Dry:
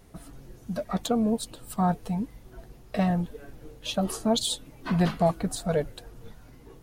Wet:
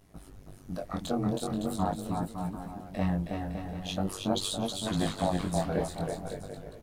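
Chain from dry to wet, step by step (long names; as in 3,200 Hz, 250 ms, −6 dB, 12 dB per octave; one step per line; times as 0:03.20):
amplitude modulation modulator 97 Hz, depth 95%
bouncing-ball delay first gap 320 ms, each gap 0.75×, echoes 5
chorus effect 0.43 Hz, delay 17.5 ms, depth 7.2 ms
level +1.5 dB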